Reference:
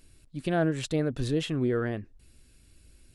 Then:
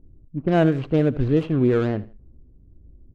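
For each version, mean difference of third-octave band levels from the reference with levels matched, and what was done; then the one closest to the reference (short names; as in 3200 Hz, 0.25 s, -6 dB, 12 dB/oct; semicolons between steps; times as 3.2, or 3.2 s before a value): 4.5 dB: median filter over 25 samples; low-pass opened by the level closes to 340 Hz, open at -22 dBFS; high shelf 5600 Hz -9.5 dB; on a send: feedback echo 80 ms, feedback 29%, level -18.5 dB; on the sum: gain +8.5 dB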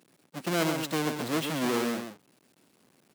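11.5 dB: half-waves squared off; HPF 180 Hz 24 dB/oct; on a send: echo 0.132 s -7.5 dB; on the sum: core saturation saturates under 860 Hz; gain -3 dB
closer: first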